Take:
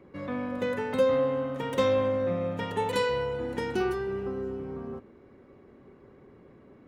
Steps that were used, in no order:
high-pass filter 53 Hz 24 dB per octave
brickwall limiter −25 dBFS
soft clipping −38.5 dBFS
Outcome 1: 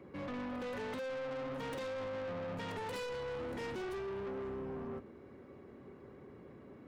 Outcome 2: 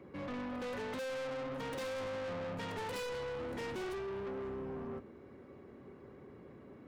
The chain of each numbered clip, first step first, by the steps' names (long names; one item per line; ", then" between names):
high-pass filter, then brickwall limiter, then soft clipping
high-pass filter, then soft clipping, then brickwall limiter